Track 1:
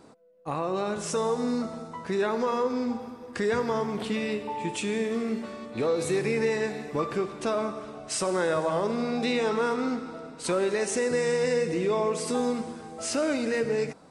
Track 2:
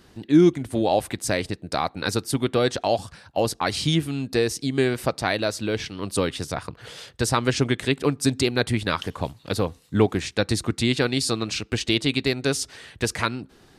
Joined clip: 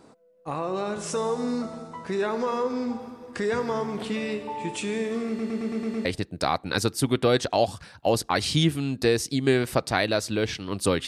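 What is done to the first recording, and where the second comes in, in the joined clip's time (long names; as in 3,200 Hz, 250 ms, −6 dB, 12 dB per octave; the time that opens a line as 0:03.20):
track 1
0:05.28: stutter in place 0.11 s, 7 plays
0:06.05: continue with track 2 from 0:01.36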